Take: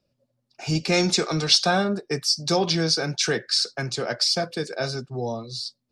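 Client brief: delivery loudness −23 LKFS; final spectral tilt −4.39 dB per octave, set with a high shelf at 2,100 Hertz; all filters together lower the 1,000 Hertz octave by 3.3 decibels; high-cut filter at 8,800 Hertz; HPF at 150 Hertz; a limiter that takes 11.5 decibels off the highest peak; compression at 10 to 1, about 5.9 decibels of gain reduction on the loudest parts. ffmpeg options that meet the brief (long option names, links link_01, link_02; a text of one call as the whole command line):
ffmpeg -i in.wav -af "highpass=150,lowpass=8800,equalizer=frequency=1000:width_type=o:gain=-3.5,highshelf=frequency=2100:gain=-8,acompressor=threshold=-25dB:ratio=10,volume=13dB,alimiter=limit=-14dB:level=0:latency=1" out.wav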